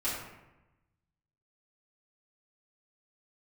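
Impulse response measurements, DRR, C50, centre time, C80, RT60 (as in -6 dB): -11.5 dB, 1.5 dB, 60 ms, 4.0 dB, 1.0 s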